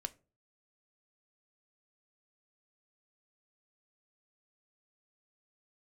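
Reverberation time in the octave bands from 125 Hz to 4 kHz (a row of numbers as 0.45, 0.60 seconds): 0.55, 0.45, 0.40, 0.30, 0.25, 0.20 seconds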